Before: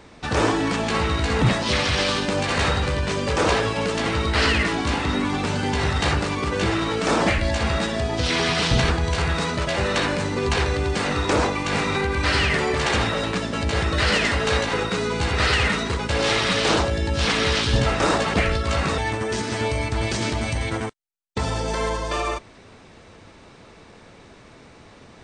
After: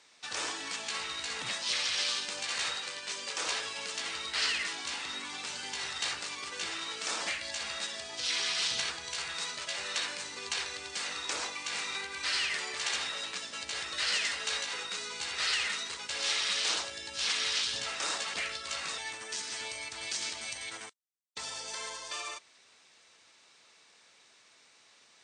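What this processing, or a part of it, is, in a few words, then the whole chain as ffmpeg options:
piezo pickup straight into a mixer: -filter_complex "[0:a]asettb=1/sr,asplit=3[s0][s1][s2];[s0]atrim=end=2.754[s3];[s1]atrim=start=2.75:end=3.4,asetpts=PTS-STARTPTS,afade=t=in:d=0.004:c=qsin,afade=t=out:st=0.646:d=0.004:c=qsin,highpass=170[s4];[s2]atrim=start=3.396[s5];[s3][s4]acrossfade=d=0.004:c1=hsin:c2=qsin[s6];[s6][s5]acrossfade=d=0.004:c1=qsin:c2=hsin,lowpass=7800,aderivative"

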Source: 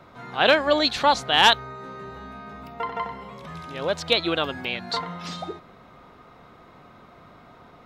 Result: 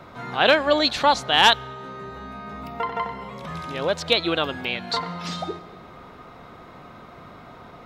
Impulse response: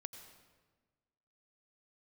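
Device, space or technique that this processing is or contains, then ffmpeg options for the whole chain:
ducked reverb: -filter_complex "[0:a]asplit=3[s0][s1][s2];[1:a]atrim=start_sample=2205[s3];[s1][s3]afir=irnorm=-1:irlink=0[s4];[s2]apad=whole_len=346410[s5];[s4][s5]sidechaincompress=threshold=0.0282:ratio=10:attack=6.8:release=869,volume=1.5[s6];[s0][s6]amix=inputs=2:normalize=0"

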